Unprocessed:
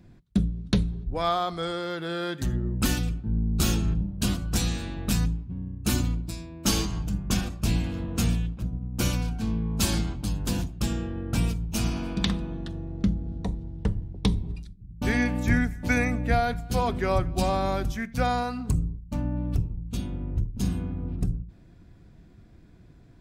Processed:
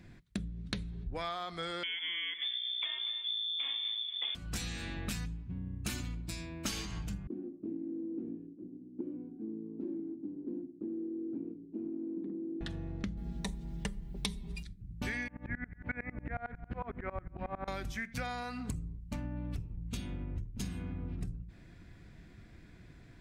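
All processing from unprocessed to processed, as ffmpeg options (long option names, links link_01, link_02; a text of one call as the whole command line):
ffmpeg -i in.wav -filter_complex "[0:a]asettb=1/sr,asplit=3[link_01][link_02][link_03];[link_01]atrim=end=1.834[link_04];[link_02]atrim=start=1.83:end=4.35,asetpts=PTS-STARTPTS,afade=type=in:duration=0.004:curve=qsin,afade=type=out:start_time=2.516:duration=0.004:curve=qsin,lowpass=frequency=3100:width_type=q:width=0.5098,lowpass=frequency=3100:width_type=q:width=0.6013,lowpass=frequency=3100:width_type=q:width=0.9,lowpass=frequency=3100:width_type=q:width=2.563,afreqshift=-3600,highpass=190,aecho=1:1:238|476:0.2|0.0439,atrim=end_sample=111132[link_05];[link_03]atrim=start=4.346[link_06];[link_04][link_05]acrossfade=duration=0.004:curve1=hsin:curve2=qsin[link_07];[link_07][link_06]acrossfade=duration=0.004:curve1=qsin:curve2=hsin,asettb=1/sr,asplit=3[link_08][link_09][link_10];[link_08]atrim=end=7.274[link_11];[link_09]atrim=start=7.27:end=12.61,asetpts=PTS-STARTPTS,afade=type=in:duration=0.004:curve=qsin,afade=type=out:start_time=5.336:duration=0.004:curve=qsin,asuperpass=centerf=320:order=4:qfactor=3.1,acontrast=26[link_12];[link_10]atrim=start=12.606[link_13];[link_11][link_12]acrossfade=duration=0.004:curve1=hsin:curve2=qsin[link_14];[link_14][link_13]acrossfade=duration=0.004:curve1=qsin:curve2=hsin,asettb=1/sr,asplit=3[link_15][link_16][link_17];[link_15]atrim=end=13.174[link_18];[link_16]atrim=start=13.17:end=14.63,asetpts=PTS-STARTPTS,afade=type=in:duration=0.004:curve=qsin,afade=type=out:start_time=1.456:duration=0.004:curve=qsin,aemphasis=mode=production:type=75kf,aecho=1:1:5:0.99,atrim=end_sample=64386[link_19];[link_17]atrim=start=14.626[link_20];[link_18][link_19]acrossfade=duration=0.004:curve1=hsin:curve2=qsin[link_21];[link_21][link_20]acrossfade=duration=0.004:curve1=qsin:curve2=hsin,asettb=1/sr,asplit=3[link_22][link_23][link_24];[link_22]atrim=end=15.284[link_25];[link_23]atrim=start=15.28:end=17.68,asetpts=PTS-STARTPTS,afade=type=in:duration=0.004:curve=qsin,afade=type=out:start_time=2.396:duration=0.004:curve=qsin,lowpass=frequency=1900:width=0.5412,lowpass=frequency=1900:width=1.3066,aeval=exprs='val(0)*pow(10,-25*if(lt(mod(-11*n/s,1),2*abs(-11)/1000),1-mod(-11*n/s,1)/(2*abs(-11)/1000),(mod(-11*n/s,1)-2*abs(-11)/1000)/(1-2*abs(-11)/1000))/20)':channel_layout=same[link_26];[link_24]atrim=start=17.676[link_27];[link_25][link_26]acrossfade=duration=0.004:curve1=hsin:curve2=qsin[link_28];[link_28][link_27]acrossfade=duration=0.004:curve1=qsin:curve2=hsin,equalizer=frequency=2000:width_type=o:width=1:gain=10,equalizer=frequency=4000:width_type=o:width=1:gain=3,equalizer=frequency=8000:width_type=o:width=1:gain=4,acompressor=threshold=-33dB:ratio=6,volume=-2.5dB" out.wav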